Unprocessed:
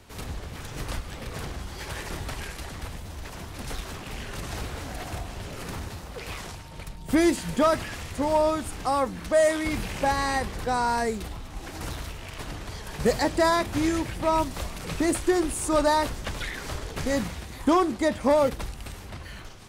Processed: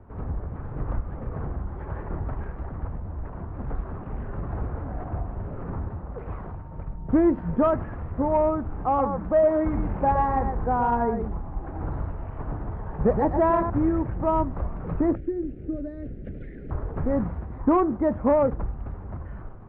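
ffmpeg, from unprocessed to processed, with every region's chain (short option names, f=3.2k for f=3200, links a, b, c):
-filter_complex "[0:a]asettb=1/sr,asplit=3[a][b][c];[a]atrim=end=8.764[d];[b]atrim=start=8.76:end=13.7,asetpts=PTS-STARTPTS,afade=t=in:d=0.004:c=qsin,afade=t=out:st=4.936:d=0.004:c=qsin,equalizer=f=820:w=4.2:g=3,aecho=1:1:118:0.473,atrim=end_sample=217854[e];[c]atrim=start=13.696[f];[d][e]acrossfade=d=0.004:c1=hsin:c2=qsin[g];[g][f]acrossfade=d=0.004:c1=qsin:c2=hsin,asettb=1/sr,asplit=3[h][i][j];[h]atrim=end=15.154[k];[i]atrim=start=15.15:end=16.71,asetpts=PTS-STARTPTS,afade=t=in:d=0.004:c=qsin,afade=t=out:st=1.556:d=0.004:c=qsin,acrossover=split=150|3500[l][m][n];[l]acompressor=threshold=-43dB:ratio=4[o];[m]acompressor=threshold=-27dB:ratio=4[p];[n]acompressor=threshold=-46dB:ratio=4[q];[o][p][q]amix=inputs=3:normalize=0,asuperstop=centerf=1000:order=4:qfactor=0.55[r];[j]atrim=start=16.706[s];[k][r]acrossfade=d=0.004:c1=hsin:c2=qsin[t];[t][s]acrossfade=d=0.004:c1=qsin:c2=hsin,lowpass=f=1.3k:w=0.5412,lowpass=f=1.3k:w=1.3066,lowshelf=f=240:g=6,acontrast=71,volume=-6.5dB"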